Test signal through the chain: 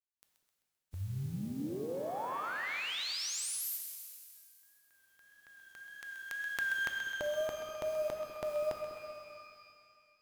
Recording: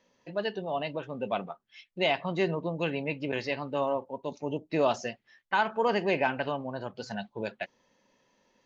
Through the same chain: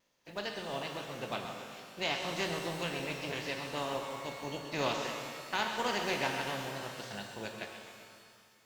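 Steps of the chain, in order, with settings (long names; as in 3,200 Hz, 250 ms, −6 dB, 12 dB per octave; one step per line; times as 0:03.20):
compressing power law on the bin magnitudes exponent 0.53
tape wow and flutter 46 cents
on a send: echo with a time of its own for lows and highs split 460 Hz, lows 197 ms, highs 130 ms, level −10.5 dB
on the sum: reverb with rising layers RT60 2.2 s, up +12 semitones, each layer −8 dB, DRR 4 dB
level −8 dB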